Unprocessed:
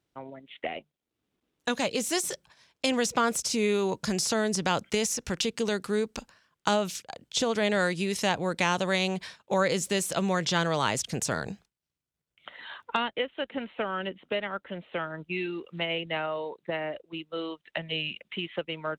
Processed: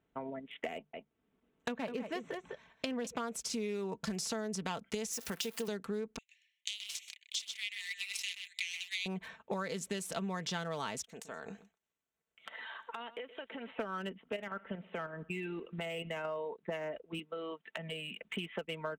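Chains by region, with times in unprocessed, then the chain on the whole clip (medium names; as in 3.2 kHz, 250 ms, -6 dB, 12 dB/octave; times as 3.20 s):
0.73–3.07 s: low-pass that closes with the level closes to 2.5 kHz, closed at -26.5 dBFS + delay 203 ms -9 dB
5.13–5.68 s: zero-crossing glitches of -28 dBFS + high-pass 260 Hz 6 dB/octave
6.18–9.06 s: steep high-pass 2 kHz 96 dB/octave + delay 127 ms -7.5 dB
11.03–13.71 s: tone controls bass -13 dB, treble +9 dB + compression, threshold -42 dBFS + delay 122 ms -16 dB
14.21–16.25 s: level held to a coarse grid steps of 9 dB + feedback delay 61 ms, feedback 59%, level -23 dB
17.19–18.22 s: high-pass 140 Hz + compression 4:1, threshold -38 dBFS
whole clip: local Wiener filter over 9 samples; comb 4.5 ms, depth 44%; compression 5:1, threshold -39 dBFS; trim +2.5 dB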